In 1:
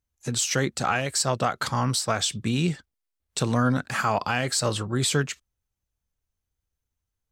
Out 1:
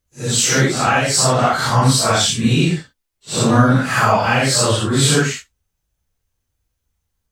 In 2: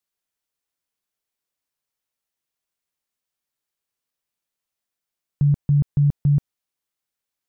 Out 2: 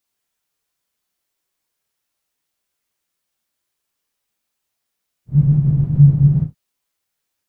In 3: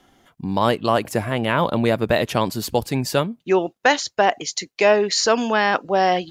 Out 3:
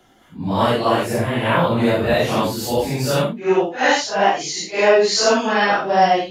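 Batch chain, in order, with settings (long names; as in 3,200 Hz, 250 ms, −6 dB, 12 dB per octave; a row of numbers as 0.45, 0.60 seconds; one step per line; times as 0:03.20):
random phases in long frames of 200 ms
normalise the peak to −1.5 dBFS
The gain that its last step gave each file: +10.0, +8.0, +2.0 decibels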